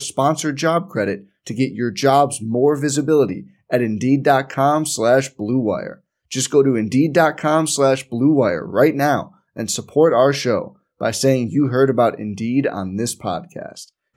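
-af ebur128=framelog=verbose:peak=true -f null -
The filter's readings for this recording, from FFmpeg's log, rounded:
Integrated loudness:
  I:         -18.0 LUFS
  Threshold: -28.4 LUFS
Loudness range:
  LRA:         1.9 LU
  Threshold: -38.0 LUFS
  LRA low:   -19.0 LUFS
  LRA high:  -17.1 LUFS
True peak:
  Peak:       -1.1 dBFS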